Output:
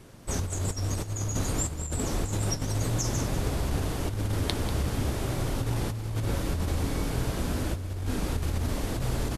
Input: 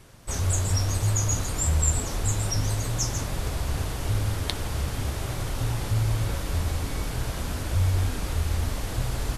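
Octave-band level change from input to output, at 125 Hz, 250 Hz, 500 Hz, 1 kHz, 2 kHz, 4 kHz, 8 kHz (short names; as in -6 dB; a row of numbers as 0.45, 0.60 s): -3.5, +3.5, +2.0, -1.5, -2.5, -3.0, -5.5 dB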